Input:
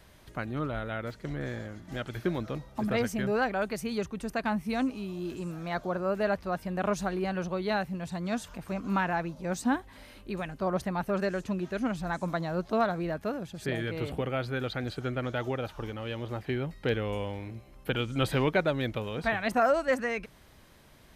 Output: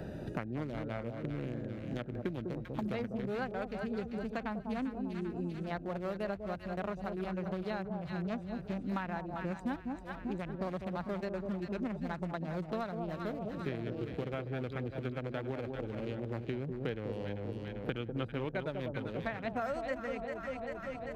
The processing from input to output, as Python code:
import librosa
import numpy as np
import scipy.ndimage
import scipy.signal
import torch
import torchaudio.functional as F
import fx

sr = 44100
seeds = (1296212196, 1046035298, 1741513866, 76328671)

y = fx.wiener(x, sr, points=41)
y = fx.echo_alternate(y, sr, ms=197, hz=920.0, feedback_pct=65, wet_db=-6)
y = fx.band_squash(y, sr, depth_pct=100)
y = y * 10.0 ** (-7.5 / 20.0)